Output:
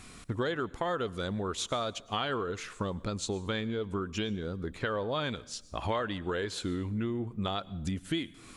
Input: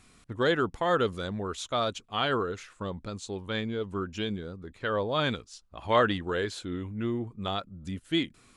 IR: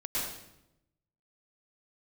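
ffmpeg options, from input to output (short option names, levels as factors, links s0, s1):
-filter_complex "[0:a]acompressor=threshold=0.0112:ratio=6,asplit=2[s0][s1];[1:a]atrim=start_sample=2205,highshelf=f=7800:g=11[s2];[s1][s2]afir=irnorm=-1:irlink=0,volume=0.0447[s3];[s0][s3]amix=inputs=2:normalize=0,volume=2.66"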